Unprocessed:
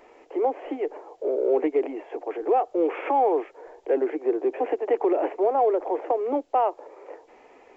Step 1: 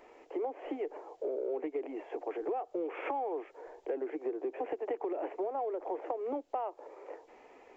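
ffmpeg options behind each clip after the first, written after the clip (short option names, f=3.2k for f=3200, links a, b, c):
-af "acompressor=threshold=-28dB:ratio=6,volume=-4.5dB"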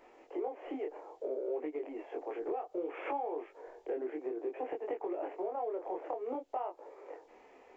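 -af "flanger=delay=20:depth=6.5:speed=0.59,volume=1dB"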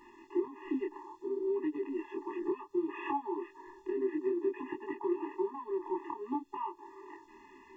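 -af "afftfilt=real='re*eq(mod(floor(b*sr/1024/410),2),0)':imag='im*eq(mod(floor(b*sr/1024/410),2),0)':win_size=1024:overlap=0.75,volume=7.5dB"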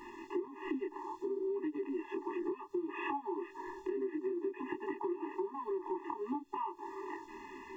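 -af "acompressor=threshold=-43dB:ratio=4,volume=7dB"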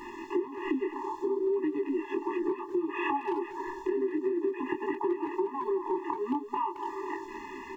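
-filter_complex "[0:a]asplit=2[a][b];[b]adelay=220,highpass=300,lowpass=3.4k,asoftclip=type=hard:threshold=-33.5dB,volume=-10dB[c];[a][c]amix=inputs=2:normalize=0,volume=7dB"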